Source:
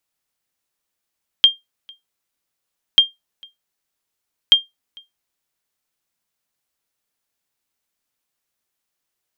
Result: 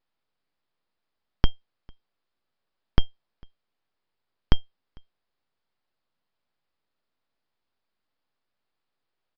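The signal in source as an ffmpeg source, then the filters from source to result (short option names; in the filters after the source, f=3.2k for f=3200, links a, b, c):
-f lavfi -i "aevalsrc='0.841*(sin(2*PI*3200*mod(t,1.54))*exp(-6.91*mod(t,1.54)/0.17)+0.0316*sin(2*PI*3200*max(mod(t,1.54)-0.45,0))*exp(-6.91*max(mod(t,1.54)-0.45,0)/0.17))':d=4.62:s=44100"
-filter_complex "[0:a]acrossover=split=380|1700[a][b][c];[c]aeval=exprs='abs(val(0))':c=same[d];[a][b][d]amix=inputs=3:normalize=0,aresample=11025,aresample=44100"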